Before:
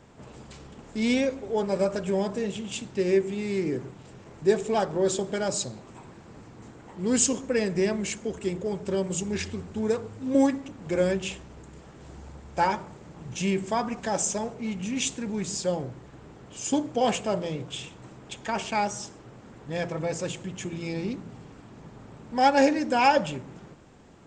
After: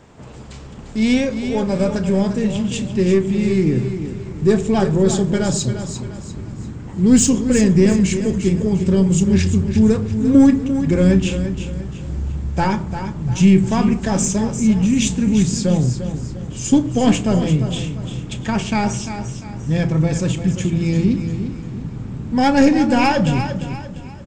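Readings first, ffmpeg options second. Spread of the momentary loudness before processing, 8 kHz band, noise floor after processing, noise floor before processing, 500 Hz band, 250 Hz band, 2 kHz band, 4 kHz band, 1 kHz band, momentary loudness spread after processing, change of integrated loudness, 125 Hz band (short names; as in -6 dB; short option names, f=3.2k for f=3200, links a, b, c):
22 LU, +6.5 dB, -34 dBFS, -49 dBFS, +5.5 dB, +14.0 dB, +5.5 dB, +6.5 dB, +3.0 dB, 15 LU, +10.0 dB, +18.5 dB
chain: -filter_complex "[0:a]aeval=exprs='0.376*(cos(1*acos(clip(val(0)/0.376,-1,1)))-cos(1*PI/2))+0.0237*(cos(5*acos(clip(val(0)/0.376,-1,1)))-cos(5*PI/2))+0.00237*(cos(8*acos(clip(val(0)/0.376,-1,1)))-cos(8*PI/2))':c=same,asplit=2[a][b];[b]adelay=32,volume=-13.5dB[c];[a][c]amix=inputs=2:normalize=0,asplit=2[d][e];[e]aecho=0:1:347|694|1041|1388:0.335|0.127|0.0484|0.0184[f];[d][f]amix=inputs=2:normalize=0,asubboost=boost=5.5:cutoff=240,volume=4dB"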